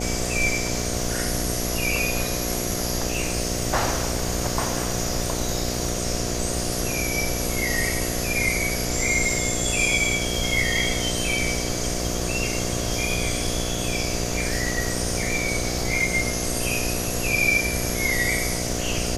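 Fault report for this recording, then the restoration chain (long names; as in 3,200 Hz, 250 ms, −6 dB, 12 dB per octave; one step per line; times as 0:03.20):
mains buzz 60 Hz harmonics 12 −29 dBFS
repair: hum removal 60 Hz, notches 12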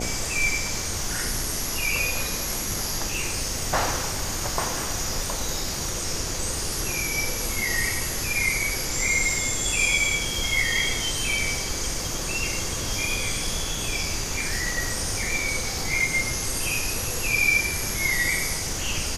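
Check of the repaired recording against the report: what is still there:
none of them is left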